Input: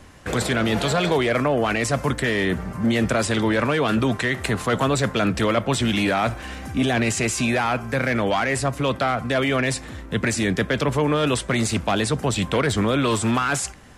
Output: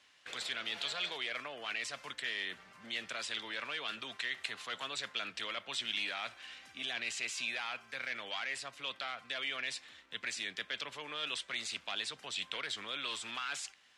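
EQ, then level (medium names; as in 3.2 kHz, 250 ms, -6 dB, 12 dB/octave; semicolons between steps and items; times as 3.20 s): band-pass filter 3.4 kHz, Q 1.5; -7.0 dB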